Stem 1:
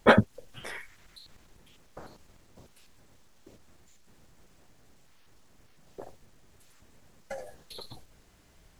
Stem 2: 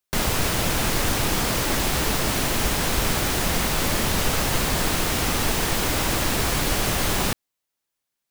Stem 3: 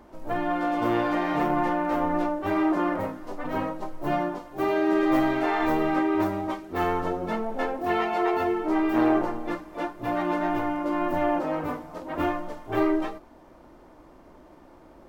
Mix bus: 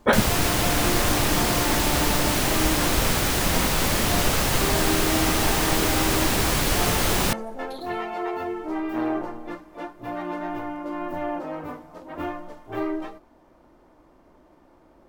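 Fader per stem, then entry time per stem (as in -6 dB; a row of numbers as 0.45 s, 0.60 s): -1.0 dB, +0.5 dB, -4.5 dB; 0.00 s, 0.00 s, 0.00 s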